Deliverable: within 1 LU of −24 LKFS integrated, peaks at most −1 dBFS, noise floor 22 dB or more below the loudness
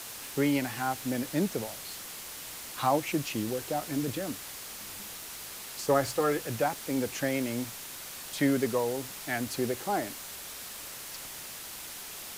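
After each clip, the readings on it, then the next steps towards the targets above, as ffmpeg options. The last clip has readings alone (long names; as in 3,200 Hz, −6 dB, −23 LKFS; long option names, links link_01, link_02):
background noise floor −43 dBFS; target noise floor −55 dBFS; integrated loudness −32.5 LKFS; sample peak −13.0 dBFS; target loudness −24.0 LKFS
→ -af "afftdn=noise_reduction=12:noise_floor=-43"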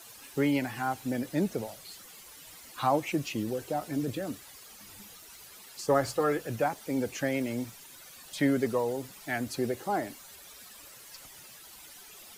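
background noise floor −51 dBFS; target noise floor −54 dBFS
→ -af "afftdn=noise_reduction=6:noise_floor=-51"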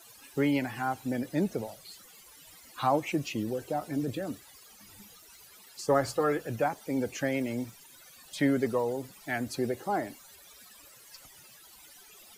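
background noise floor −55 dBFS; integrated loudness −31.5 LKFS; sample peak −13.0 dBFS; target loudness −24.0 LKFS
→ -af "volume=7.5dB"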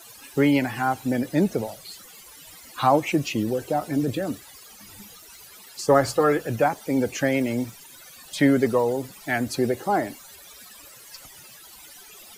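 integrated loudness −24.0 LKFS; sample peak −5.5 dBFS; background noise floor −47 dBFS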